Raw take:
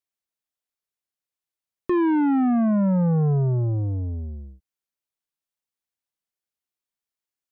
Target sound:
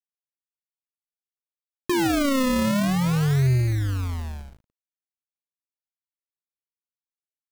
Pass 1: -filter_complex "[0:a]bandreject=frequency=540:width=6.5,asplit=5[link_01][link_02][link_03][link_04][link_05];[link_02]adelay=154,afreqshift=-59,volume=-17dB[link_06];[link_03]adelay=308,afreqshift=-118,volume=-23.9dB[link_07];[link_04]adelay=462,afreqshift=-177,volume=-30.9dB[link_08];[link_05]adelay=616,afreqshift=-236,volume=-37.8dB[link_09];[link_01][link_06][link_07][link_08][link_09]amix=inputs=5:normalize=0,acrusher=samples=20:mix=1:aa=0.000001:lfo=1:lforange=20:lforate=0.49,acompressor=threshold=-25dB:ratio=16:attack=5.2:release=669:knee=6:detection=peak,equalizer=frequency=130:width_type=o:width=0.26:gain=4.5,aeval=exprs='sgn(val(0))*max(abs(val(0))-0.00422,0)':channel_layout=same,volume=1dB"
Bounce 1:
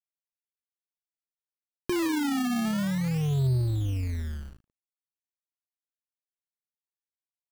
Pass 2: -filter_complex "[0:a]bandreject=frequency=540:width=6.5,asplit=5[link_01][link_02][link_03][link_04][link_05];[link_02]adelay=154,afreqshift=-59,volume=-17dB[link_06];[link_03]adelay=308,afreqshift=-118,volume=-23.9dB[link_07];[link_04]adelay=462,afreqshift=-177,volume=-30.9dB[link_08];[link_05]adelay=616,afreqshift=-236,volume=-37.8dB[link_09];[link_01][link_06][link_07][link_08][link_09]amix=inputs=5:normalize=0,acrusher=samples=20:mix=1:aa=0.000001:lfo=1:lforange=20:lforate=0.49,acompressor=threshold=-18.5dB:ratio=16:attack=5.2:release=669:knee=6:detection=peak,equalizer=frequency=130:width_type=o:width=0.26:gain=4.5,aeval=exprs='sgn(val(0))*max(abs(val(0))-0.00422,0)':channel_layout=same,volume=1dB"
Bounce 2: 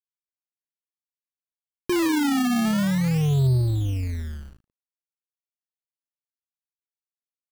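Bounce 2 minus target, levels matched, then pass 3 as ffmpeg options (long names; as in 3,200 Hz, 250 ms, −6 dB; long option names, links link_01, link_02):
sample-and-hold swept by an LFO: distortion −6 dB
-filter_complex "[0:a]bandreject=frequency=540:width=6.5,asplit=5[link_01][link_02][link_03][link_04][link_05];[link_02]adelay=154,afreqshift=-59,volume=-17dB[link_06];[link_03]adelay=308,afreqshift=-118,volume=-23.9dB[link_07];[link_04]adelay=462,afreqshift=-177,volume=-30.9dB[link_08];[link_05]adelay=616,afreqshift=-236,volume=-37.8dB[link_09];[link_01][link_06][link_07][link_08][link_09]amix=inputs=5:normalize=0,acrusher=samples=39:mix=1:aa=0.000001:lfo=1:lforange=39:lforate=0.49,acompressor=threshold=-18.5dB:ratio=16:attack=5.2:release=669:knee=6:detection=peak,equalizer=frequency=130:width_type=o:width=0.26:gain=4.5,aeval=exprs='sgn(val(0))*max(abs(val(0))-0.00422,0)':channel_layout=same,volume=1dB"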